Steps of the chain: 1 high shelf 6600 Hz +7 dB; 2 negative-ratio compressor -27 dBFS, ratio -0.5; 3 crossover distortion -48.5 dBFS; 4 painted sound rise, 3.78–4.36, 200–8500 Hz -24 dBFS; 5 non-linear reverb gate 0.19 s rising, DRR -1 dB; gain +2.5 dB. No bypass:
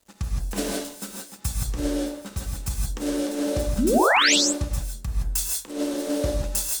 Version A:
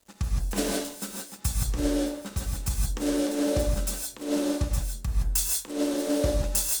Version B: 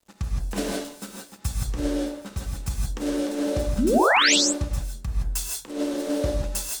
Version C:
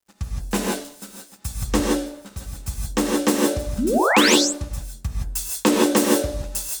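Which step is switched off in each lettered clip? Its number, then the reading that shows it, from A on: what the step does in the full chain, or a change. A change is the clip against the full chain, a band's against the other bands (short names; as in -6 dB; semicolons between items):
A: 4, 2 kHz band -10.5 dB; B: 1, 8 kHz band -1.5 dB; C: 2, crest factor change +2.0 dB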